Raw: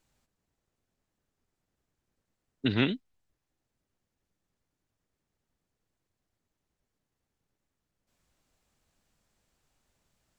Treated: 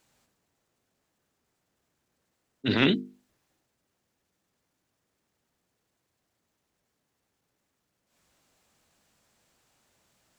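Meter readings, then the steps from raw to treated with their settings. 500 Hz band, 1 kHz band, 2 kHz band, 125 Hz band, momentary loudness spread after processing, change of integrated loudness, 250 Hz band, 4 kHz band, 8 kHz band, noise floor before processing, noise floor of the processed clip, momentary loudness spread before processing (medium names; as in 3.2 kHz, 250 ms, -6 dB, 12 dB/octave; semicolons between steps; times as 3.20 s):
+5.5 dB, +6.0 dB, +5.0 dB, +1.0 dB, 9 LU, +3.5 dB, +3.5 dB, +5.5 dB, no reading, -85 dBFS, -79 dBFS, 9 LU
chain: high-pass 160 Hz 6 dB/octave; hum notches 50/100/150/200/250/300/350/400/450 Hz; transient shaper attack -10 dB, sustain +4 dB; trim +8 dB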